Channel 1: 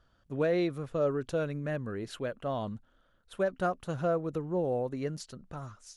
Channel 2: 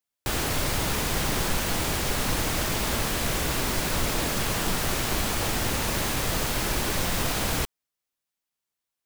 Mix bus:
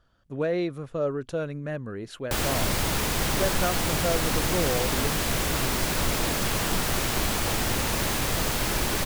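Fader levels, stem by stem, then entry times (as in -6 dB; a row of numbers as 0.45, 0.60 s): +1.5, +0.5 dB; 0.00, 2.05 s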